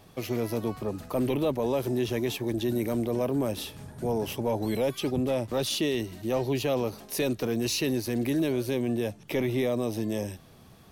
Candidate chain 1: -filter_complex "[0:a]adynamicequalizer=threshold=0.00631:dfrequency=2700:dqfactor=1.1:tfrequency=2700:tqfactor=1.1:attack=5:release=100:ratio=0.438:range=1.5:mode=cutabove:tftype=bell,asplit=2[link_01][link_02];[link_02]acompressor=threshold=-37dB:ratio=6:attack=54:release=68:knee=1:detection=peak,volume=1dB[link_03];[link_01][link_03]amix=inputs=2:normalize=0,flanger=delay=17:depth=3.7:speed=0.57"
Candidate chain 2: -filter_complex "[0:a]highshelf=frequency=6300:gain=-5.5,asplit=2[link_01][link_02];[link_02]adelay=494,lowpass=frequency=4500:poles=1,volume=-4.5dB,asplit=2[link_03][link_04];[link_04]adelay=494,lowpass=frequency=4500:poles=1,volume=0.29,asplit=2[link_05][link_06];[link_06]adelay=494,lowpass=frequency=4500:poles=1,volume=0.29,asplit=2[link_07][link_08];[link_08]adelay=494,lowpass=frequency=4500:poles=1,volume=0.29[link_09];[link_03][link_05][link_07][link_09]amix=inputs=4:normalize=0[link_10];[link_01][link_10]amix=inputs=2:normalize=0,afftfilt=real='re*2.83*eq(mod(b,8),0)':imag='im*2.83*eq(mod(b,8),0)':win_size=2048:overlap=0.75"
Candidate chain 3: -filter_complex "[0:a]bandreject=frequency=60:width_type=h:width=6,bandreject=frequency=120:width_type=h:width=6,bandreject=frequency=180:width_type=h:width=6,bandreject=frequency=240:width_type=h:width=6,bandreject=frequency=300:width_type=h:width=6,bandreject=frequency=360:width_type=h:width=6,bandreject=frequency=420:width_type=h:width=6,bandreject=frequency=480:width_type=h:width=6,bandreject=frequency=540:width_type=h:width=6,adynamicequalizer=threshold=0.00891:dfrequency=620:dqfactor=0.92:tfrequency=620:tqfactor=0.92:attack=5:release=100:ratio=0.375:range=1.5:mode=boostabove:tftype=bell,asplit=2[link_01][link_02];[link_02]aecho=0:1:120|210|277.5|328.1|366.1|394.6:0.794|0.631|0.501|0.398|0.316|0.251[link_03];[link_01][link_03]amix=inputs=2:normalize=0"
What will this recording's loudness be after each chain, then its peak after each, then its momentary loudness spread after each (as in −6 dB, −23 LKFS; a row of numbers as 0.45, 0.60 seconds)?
−28.5, −31.5, −24.5 LKFS; −14.5, −14.5, −10.0 dBFS; 4, 6, 5 LU